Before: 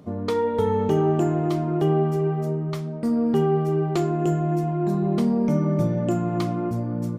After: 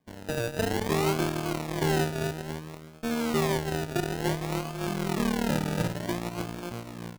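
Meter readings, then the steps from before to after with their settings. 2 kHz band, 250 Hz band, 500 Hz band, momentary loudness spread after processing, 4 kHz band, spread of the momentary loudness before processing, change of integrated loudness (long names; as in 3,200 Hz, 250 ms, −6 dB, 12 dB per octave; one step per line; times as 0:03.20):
+7.5 dB, −8.0 dB, −7.5 dB, 10 LU, +6.5 dB, 5 LU, −6.5 dB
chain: harmonic generator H 5 −36 dB, 6 −24 dB, 7 −17 dB, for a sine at −9 dBFS
sample-and-hold swept by an LFO 32×, swing 60% 0.57 Hz
level −5.5 dB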